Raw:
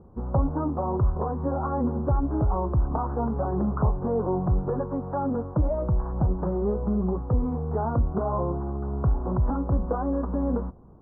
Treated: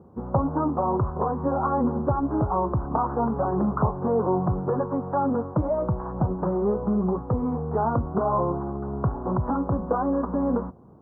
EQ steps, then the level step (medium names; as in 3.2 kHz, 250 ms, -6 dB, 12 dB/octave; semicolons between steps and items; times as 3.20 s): high-pass 110 Hz 12 dB/octave; dynamic bell 1.1 kHz, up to +4 dB, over -41 dBFS, Q 1.4; +2.5 dB